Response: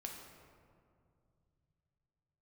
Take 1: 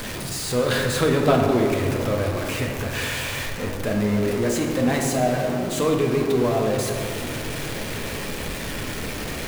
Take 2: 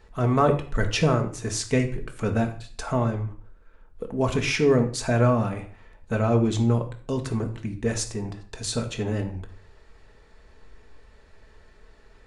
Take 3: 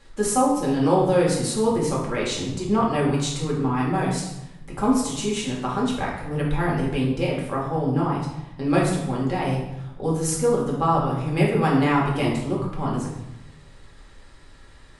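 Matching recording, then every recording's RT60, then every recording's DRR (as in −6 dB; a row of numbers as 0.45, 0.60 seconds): 1; 2.3, 0.45, 0.90 seconds; 0.5, 3.5, −4.5 decibels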